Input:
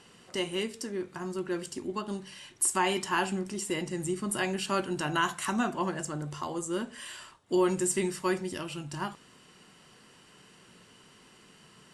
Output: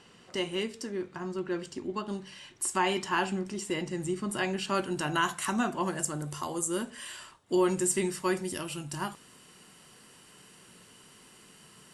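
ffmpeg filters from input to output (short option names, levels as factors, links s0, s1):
-af "asetnsamples=n=441:p=0,asendcmd='1.08 equalizer g -14;1.96 equalizer g -7;4.75 equalizer g 2.5;5.86 equalizer g 13;6.9 equalizer g 2.5;8.37 equalizer g 10.5',equalizer=f=11000:t=o:w=0.94:g=-6.5"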